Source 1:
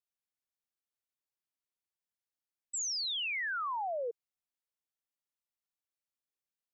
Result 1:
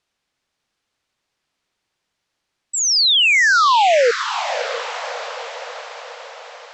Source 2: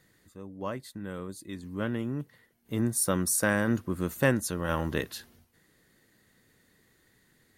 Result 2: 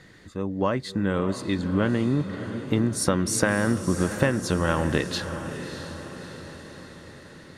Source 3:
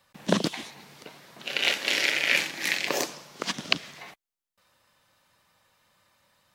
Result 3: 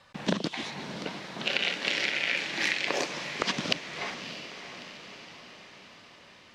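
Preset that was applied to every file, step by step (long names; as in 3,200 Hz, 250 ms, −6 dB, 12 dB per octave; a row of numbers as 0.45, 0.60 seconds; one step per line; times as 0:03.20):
low-pass filter 5,200 Hz 12 dB per octave
downward compressor 12 to 1, threshold −33 dBFS
on a send: feedback delay with all-pass diffusion 631 ms, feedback 57%, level −10 dB
on the sum: normalise the peak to −6 dBFS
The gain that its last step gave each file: +22.5, +14.5, +8.5 decibels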